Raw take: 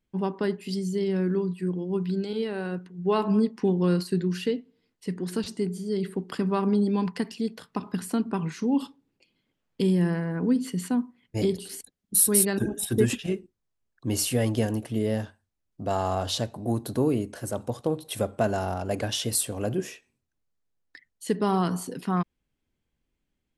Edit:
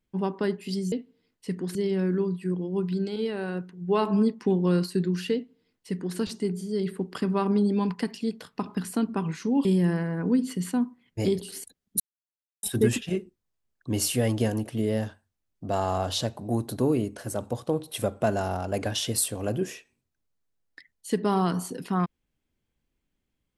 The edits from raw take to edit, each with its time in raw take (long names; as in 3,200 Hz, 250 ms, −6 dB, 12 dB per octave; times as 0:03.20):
0:04.51–0:05.34: duplicate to 0:00.92
0:08.82–0:09.82: remove
0:12.17–0:12.80: silence